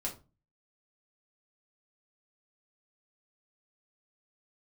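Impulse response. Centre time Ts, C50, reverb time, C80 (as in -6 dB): 16 ms, 11.5 dB, 0.30 s, 18.0 dB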